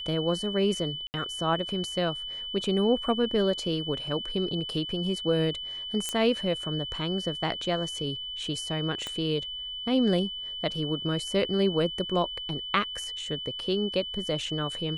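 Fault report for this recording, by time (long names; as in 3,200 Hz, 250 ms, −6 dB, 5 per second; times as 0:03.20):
whistle 3,000 Hz −34 dBFS
0:01.07–0:01.14: drop-out 69 ms
0:06.09: click −15 dBFS
0:09.07: click −19 dBFS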